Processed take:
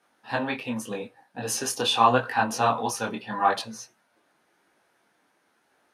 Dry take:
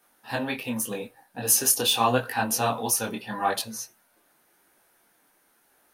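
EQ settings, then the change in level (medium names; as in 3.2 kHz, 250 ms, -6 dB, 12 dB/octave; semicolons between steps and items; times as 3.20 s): high-pass 84 Hz; dynamic bell 1.1 kHz, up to +6 dB, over -39 dBFS, Q 1.2; distance through air 76 m; 0.0 dB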